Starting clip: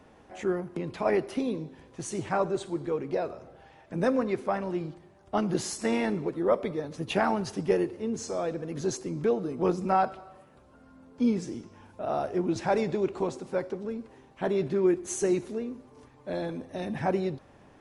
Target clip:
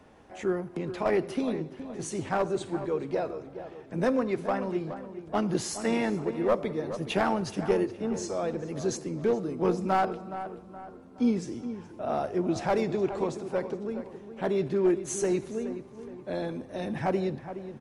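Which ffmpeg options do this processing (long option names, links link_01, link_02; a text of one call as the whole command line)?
ffmpeg -i in.wav -filter_complex "[0:a]acrossover=split=340[link_01][link_02];[link_02]aeval=exprs='clip(val(0),-1,0.0631)':channel_layout=same[link_03];[link_01][link_03]amix=inputs=2:normalize=0,asplit=2[link_04][link_05];[link_05]adelay=420,lowpass=frequency=2100:poles=1,volume=-11dB,asplit=2[link_06][link_07];[link_07]adelay=420,lowpass=frequency=2100:poles=1,volume=0.45,asplit=2[link_08][link_09];[link_09]adelay=420,lowpass=frequency=2100:poles=1,volume=0.45,asplit=2[link_10][link_11];[link_11]adelay=420,lowpass=frequency=2100:poles=1,volume=0.45,asplit=2[link_12][link_13];[link_13]adelay=420,lowpass=frequency=2100:poles=1,volume=0.45[link_14];[link_04][link_06][link_08][link_10][link_12][link_14]amix=inputs=6:normalize=0" out.wav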